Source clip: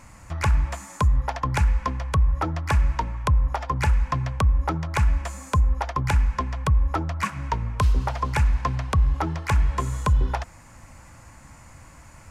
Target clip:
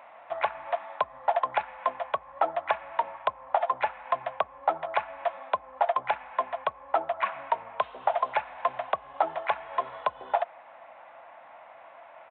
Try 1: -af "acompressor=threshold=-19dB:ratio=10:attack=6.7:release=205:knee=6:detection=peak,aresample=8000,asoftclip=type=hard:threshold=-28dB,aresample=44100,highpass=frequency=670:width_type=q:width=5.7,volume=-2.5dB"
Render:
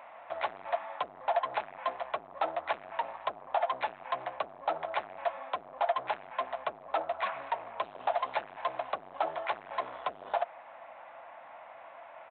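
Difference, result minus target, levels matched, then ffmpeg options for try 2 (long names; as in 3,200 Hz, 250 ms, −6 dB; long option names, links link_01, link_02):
hard clipping: distortion +23 dB
-af "acompressor=threshold=-19dB:ratio=10:attack=6.7:release=205:knee=6:detection=peak,aresample=8000,asoftclip=type=hard:threshold=-17.5dB,aresample=44100,highpass=frequency=670:width_type=q:width=5.7,volume=-2.5dB"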